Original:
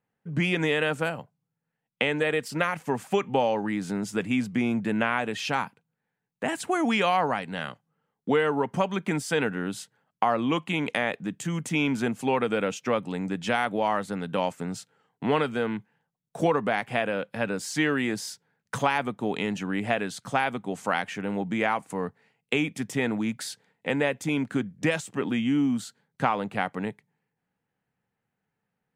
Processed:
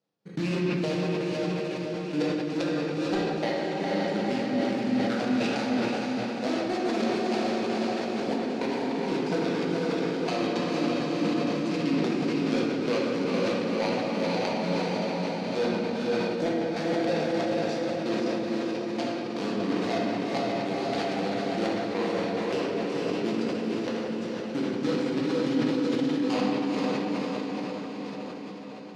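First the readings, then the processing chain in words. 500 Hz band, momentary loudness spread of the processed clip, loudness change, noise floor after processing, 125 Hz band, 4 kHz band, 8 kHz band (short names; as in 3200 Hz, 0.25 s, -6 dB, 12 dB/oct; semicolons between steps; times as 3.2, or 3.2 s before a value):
+1.0 dB, 4 LU, -0.5 dB, -34 dBFS, -1.0 dB, 0.0 dB, -5.5 dB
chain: median filter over 41 samples; step gate "x.x.xx...x...x" 162 bpm; bell 4800 Hz +12.5 dB 1.5 oct; in parallel at -10 dB: decimation with a swept rate 13×, swing 160% 0.49 Hz; on the sum: BPF 250–7000 Hz; diffused feedback echo 0.471 s, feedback 65%, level -4.5 dB; compressor, threshold -29 dBFS, peak gain reduction 10.5 dB; shoebox room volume 130 m³, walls hard, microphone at 0.68 m; sustainer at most 20 dB/s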